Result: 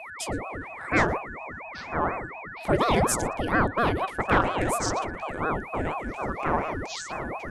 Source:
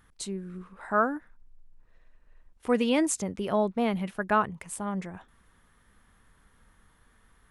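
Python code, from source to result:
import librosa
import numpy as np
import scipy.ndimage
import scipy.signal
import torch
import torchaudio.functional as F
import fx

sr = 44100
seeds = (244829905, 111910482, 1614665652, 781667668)

p1 = fx.echo_pitch(x, sr, ms=696, semitones=-5, count=3, db_per_echo=-6.0)
p2 = p1 + 10.0 ** (-41.0 / 20.0) * np.sin(2.0 * np.pi * 1600.0 * np.arange(len(p1)) / sr)
p3 = fx.fold_sine(p2, sr, drive_db=5, ceiling_db=-11.0)
p4 = p2 + (p3 * 10.0 ** (-8.5 / 20.0))
p5 = p4 + 10.0 ** (-23.0 / 20.0) * np.pad(p4, (int(117 * sr / 1000.0), 0))[:len(p4)]
y = fx.ring_lfo(p5, sr, carrier_hz=520.0, swing_pct=85, hz=4.2)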